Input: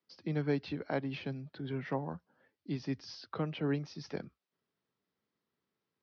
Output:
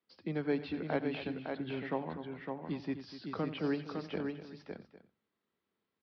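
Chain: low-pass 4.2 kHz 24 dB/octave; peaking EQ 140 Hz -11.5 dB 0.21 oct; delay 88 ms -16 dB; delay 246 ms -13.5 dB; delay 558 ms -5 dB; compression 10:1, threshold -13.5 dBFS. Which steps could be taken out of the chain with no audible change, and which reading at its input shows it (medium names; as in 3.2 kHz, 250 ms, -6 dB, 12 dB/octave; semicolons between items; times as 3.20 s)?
compression, threshold -13.5 dBFS: peak at its input -21.0 dBFS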